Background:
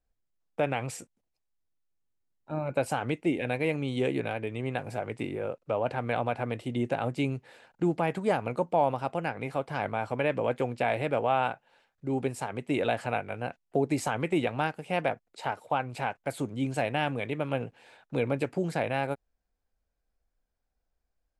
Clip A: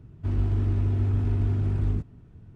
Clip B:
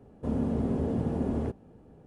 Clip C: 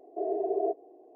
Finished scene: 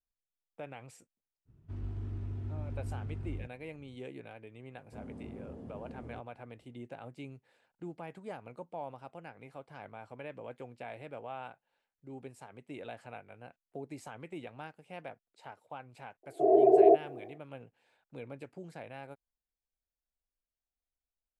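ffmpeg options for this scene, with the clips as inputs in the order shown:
-filter_complex "[0:a]volume=-16.5dB[a];[3:a]dynaudnorm=f=130:g=3:m=13dB[b];[1:a]atrim=end=2.55,asetpts=PTS-STARTPTS,volume=-14.5dB,afade=t=in:d=0.05,afade=t=out:st=2.5:d=0.05,adelay=1450[c];[2:a]atrim=end=2.06,asetpts=PTS-STARTPTS,volume=-17.5dB,afade=t=in:d=0.004:c=hsin,afade=t=out:st=2.056:d=0.004:c=hsin,adelay=206829S[d];[b]atrim=end=1.15,asetpts=PTS-STARTPTS,volume=-4.5dB,afade=t=in:d=0.004:c=hsin,afade=t=out:st=1.146:d=0.004:c=hsin,adelay=16230[e];[a][c][d][e]amix=inputs=4:normalize=0"

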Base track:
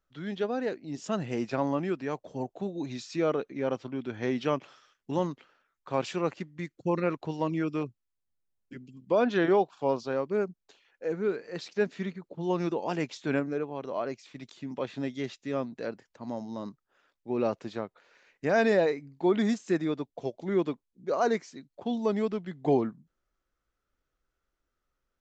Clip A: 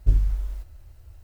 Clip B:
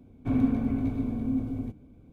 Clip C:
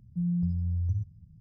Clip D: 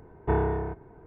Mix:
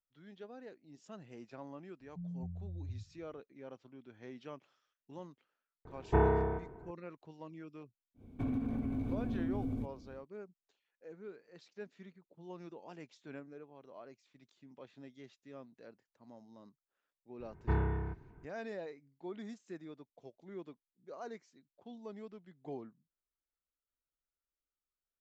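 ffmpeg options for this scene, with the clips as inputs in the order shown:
-filter_complex "[4:a]asplit=2[a][b];[0:a]volume=-19.5dB[c];[3:a]aresample=8000,aresample=44100[d];[a]aecho=1:1:65|130|195|260|325:0.251|0.126|0.0628|0.0314|0.0157[e];[2:a]acompressor=threshold=-30dB:ratio=6:attack=3.2:release=140:knee=1:detection=peak[f];[b]equalizer=f=580:t=o:w=1.5:g=-13.5[g];[d]atrim=end=1.4,asetpts=PTS-STARTPTS,volume=-14.5dB,afade=t=in:d=0.004:c=hsin,afade=t=out:st=1.396:d=0.004:c=hsin,adelay=2000[h];[e]atrim=end=1.06,asetpts=PTS-STARTPTS,volume=-2.5dB,afade=t=in:d=0.004:c=hsin,afade=t=out:st=1.056:d=0.004:c=hsin,adelay=257985S[i];[f]atrim=end=2.12,asetpts=PTS-STARTPTS,volume=-2dB,afade=t=in:d=0.1,afade=t=out:st=2.02:d=0.1,adelay=8140[j];[g]atrim=end=1.06,asetpts=PTS-STARTPTS,volume=-3dB,afade=t=in:d=0.004:c=hsin,afade=t=out:st=1.056:d=0.004:c=hsin,adelay=17400[k];[c][h][i][j][k]amix=inputs=5:normalize=0"

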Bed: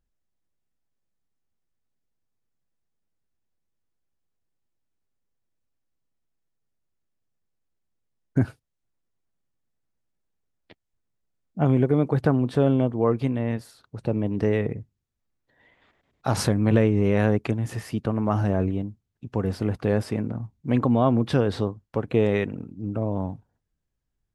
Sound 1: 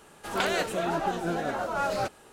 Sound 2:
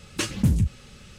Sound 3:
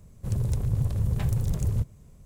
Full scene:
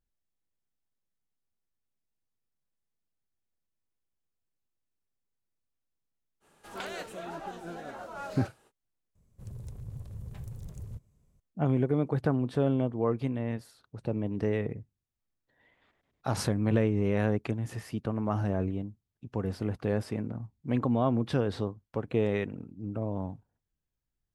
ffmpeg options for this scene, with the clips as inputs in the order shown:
-filter_complex "[0:a]volume=-6.5dB,asplit=2[a][b];[a]atrim=end=9.154[c];[3:a]atrim=end=2.25,asetpts=PTS-STARTPTS,volume=-16dB[d];[b]atrim=start=11.396[e];[1:a]atrim=end=2.32,asetpts=PTS-STARTPTS,volume=-11.5dB,afade=t=in:d=0.05,afade=t=out:st=2.27:d=0.05,adelay=6400[f];[c][d]acrossfade=d=0.004:c1=hsin:c2=hsin[g];[g][e]acrossfade=d=0.004:c1=hsin:c2=hsin[h];[h][f]amix=inputs=2:normalize=0"

